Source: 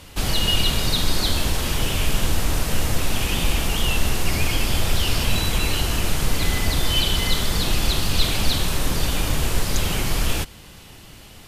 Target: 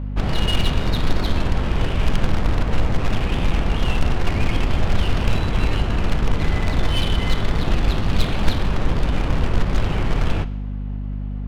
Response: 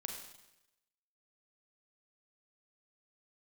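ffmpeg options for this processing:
-filter_complex "[0:a]highshelf=f=3300:g=-11,acrusher=bits=3:mode=log:mix=0:aa=0.000001,adynamicsmooth=sensitivity=3:basefreq=1500,aeval=exprs='val(0)+0.0447*(sin(2*PI*50*n/s)+sin(2*PI*2*50*n/s)/2+sin(2*PI*3*50*n/s)/3+sin(2*PI*4*50*n/s)/4+sin(2*PI*5*50*n/s)/5)':c=same,asplit=2[s0][s1];[1:a]atrim=start_sample=2205,lowpass=6200[s2];[s1][s2]afir=irnorm=-1:irlink=0,volume=0.398[s3];[s0][s3]amix=inputs=2:normalize=0"

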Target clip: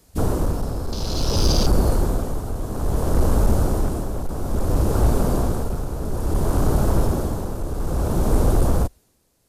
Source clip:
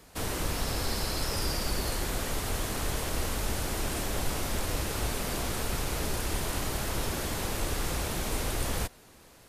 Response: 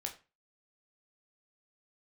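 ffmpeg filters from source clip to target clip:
-filter_complex "[0:a]afwtdn=0.0158,bass=f=250:g=2,treble=f=4000:g=10,acrossover=split=740[s0][s1];[s0]acontrast=66[s2];[s2][s1]amix=inputs=2:normalize=0,asoftclip=type=hard:threshold=0.133,tremolo=f=0.59:d=0.67,volume=2.51"

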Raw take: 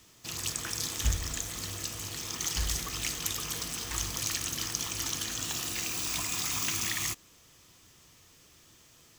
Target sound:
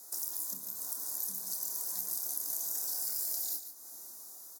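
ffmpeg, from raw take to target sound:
-filter_complex "[0:a]asuperstop=centerf=1300:order=4:qfactor=0.7,afreqshift=41,asetrate=88200,aresample=44100,dynaudnorm=f=690:g=5:m=2,asplit=2[s0][s1];[s1]adelay=27,volume=0.501[s2];[s0][s2]amix=inputs=2:normalize=0,acompressor=threshold=0.00501:ratio=4,highpass=f=790:p=1,highshelf=f=2300:g=10.5,aecho=1:1:145:0.316"

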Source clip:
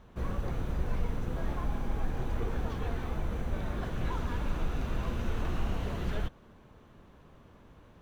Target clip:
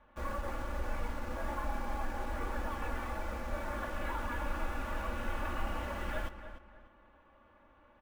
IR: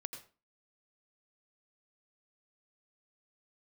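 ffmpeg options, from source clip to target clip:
-filter_complex "[0:a]acrossover=split=550 2800:gain=0.251 1 0.0708[s0][s1][s2];[s0][s1][s2]amix=inputs=3:normalize=0,aecho=1:1:3.5:0.96,bandreject=f=171.9:t=h:w=4,bandreject=f=343.8:t=h:w=4,bandreject=f=515.7:t=h:w=4,bandreject=f=687.6:t=h:w=4,bandreject=f=859.5:t=h:w=4,asplit=2[s3][s4];[s4]acrusher=bits=7:mix=0:aa=0.000001,volume=0.668[s5];[s3][s5]amix=inputs=2:normalize=0,asplit=2[s6][s7];[s7]adelay=296,lowpass=f=3300:p=1,volume=0.282,asplit=2[s8][s9];[s9]adelay=296,lowpass=f=3300:p=1,volume=0.31,asplit=2[s10][s11];[s11]adelay=296,lowpass=f=3300:p=1,volume=0.31[s12];[s6][s8][s10][s12]amix=inputs=4:normalize=0,volume=0.708"

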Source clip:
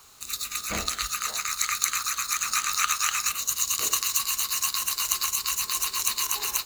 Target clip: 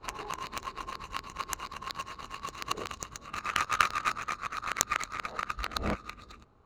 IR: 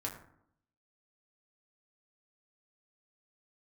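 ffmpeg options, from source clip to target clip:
-af "areverse,adynamicsmooth=sensitivity=1:basefreq=670,volume=1.41"

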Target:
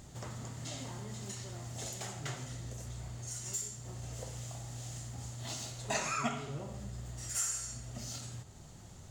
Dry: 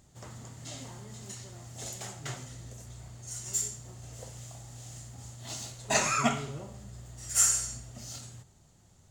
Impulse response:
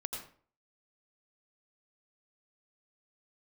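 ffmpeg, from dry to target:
-filter_complex "[0:a]acompressor=threshold=0.00178:ratio=2,asplit=2[s0][s1];[1:a]atrim=start_sample=2205,lowpass=7200[s2];[s1][s2]afir=irnorm=-1:irlink=0,volume=0.355[s3];[s0][s3]amix=inputs=2:normalize=0,volume=2.24"

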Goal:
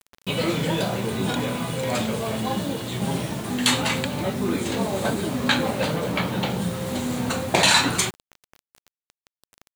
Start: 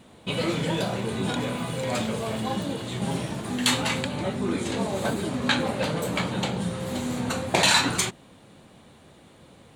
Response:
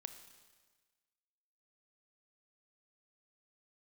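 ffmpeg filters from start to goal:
-filter_complex "[0:a]asettb=1/sr,asplit=3[s0][s1][s2];[s0]atrim=end=5.964[s3];[s1]atrim=start=5.96:end=6.5,asetpts=PTS-STARTPTS,afade=t=in:d=0.004:c=qsin,afade=t=out:st=0.536:d=0.004:c=qsin,lowpass=4300[s4];[s2]atrim=start=6.496[s5];[s3][s4]acrossfade=d=0.004:c1=hsin:c2=qsin[s6];[s6][s5]acrossfade=d=0.004:c1=qsin:c2=hsin,acrusher=bits=6:mix=0:aa=0.000001,volume=1.33"

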